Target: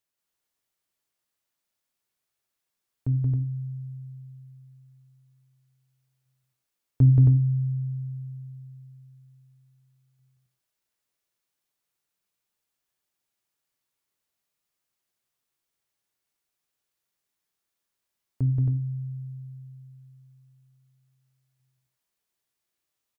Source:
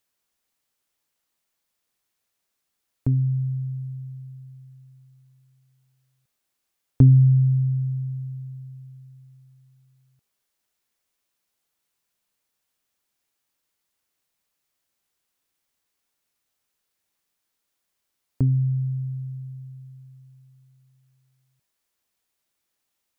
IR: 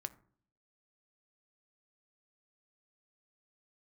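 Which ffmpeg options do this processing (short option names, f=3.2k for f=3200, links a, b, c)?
-filter_complex "[0:a]aecho=1:1:177.8|271.1:0.794|0.708[a];[1:a]atrim=start_sample=2205,afade=t=out:st=0.18:d=0.01,atrim=end_sample=8379[b];[a][b]afir=irnorm=-1:irlink=0,volume=-5dB"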